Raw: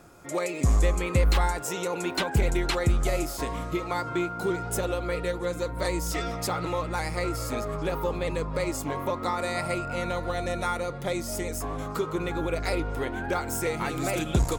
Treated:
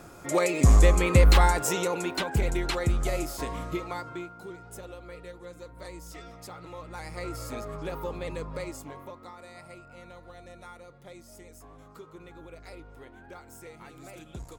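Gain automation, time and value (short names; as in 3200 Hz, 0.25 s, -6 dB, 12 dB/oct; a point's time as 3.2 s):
1.69 s +4.5 dB
2.15 s -2.5 dB
3.74 s -2.5 dB
4.46 s -14.5 dB
6.64 s -14.5 dB
7.33 s -6 dB
8.52 s -6 dB
9.33 s -18 dB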